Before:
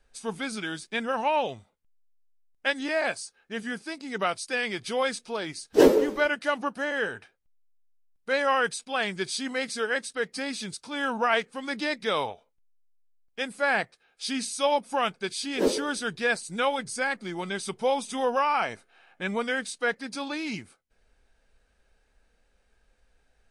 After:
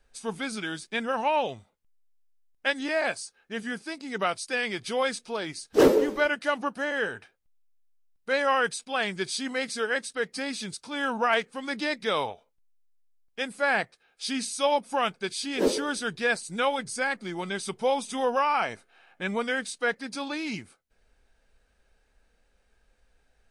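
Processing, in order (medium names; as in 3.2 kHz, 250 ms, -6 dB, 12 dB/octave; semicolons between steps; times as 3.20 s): hard clipper -11.5 dBFS, distortion -21 dB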